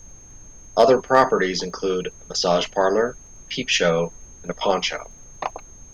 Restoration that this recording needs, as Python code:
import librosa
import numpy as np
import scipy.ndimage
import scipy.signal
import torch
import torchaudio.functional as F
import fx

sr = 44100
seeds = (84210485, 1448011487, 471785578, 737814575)

y = fx.fix_declip(x, sr, threshold_db=-5.5)
y = fx.fix_declick_ar(y, sr, threshold=6.5)
y = fx.notch(y, sr, hz=6400.0, q=30.0)
y = fx.noise_reduce(y, sr, print_start_s=0.15, print_end_s=0.65, reduce_db=22.0)